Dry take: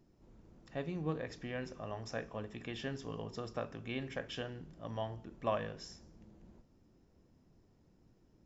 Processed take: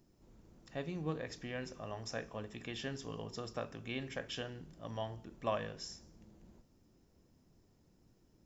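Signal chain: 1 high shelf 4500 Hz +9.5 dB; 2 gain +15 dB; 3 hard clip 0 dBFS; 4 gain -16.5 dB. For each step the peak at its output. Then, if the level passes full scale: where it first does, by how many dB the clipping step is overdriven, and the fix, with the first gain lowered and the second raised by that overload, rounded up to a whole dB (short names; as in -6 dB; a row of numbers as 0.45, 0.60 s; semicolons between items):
-19.5, -4.5, -4.5, -21.0 dBFS; no overload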